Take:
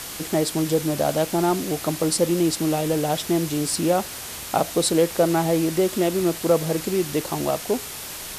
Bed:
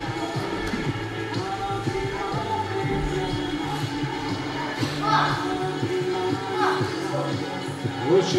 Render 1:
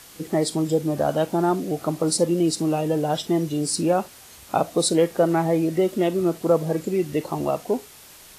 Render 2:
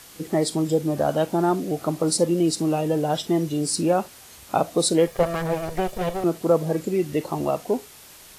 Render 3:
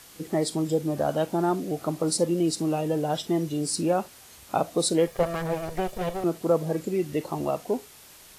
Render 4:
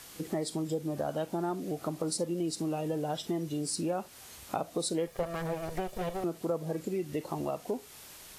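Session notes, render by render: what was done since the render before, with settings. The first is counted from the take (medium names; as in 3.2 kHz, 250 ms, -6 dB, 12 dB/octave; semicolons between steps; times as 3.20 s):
noise print and reduce 12 dB
5.07–6.24 s: comb filter that takes the minimum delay 1.7 ms
trim -3.5 dB
compression 2.5:1, threshold -33 dBFS, peak gain reduction 11 dB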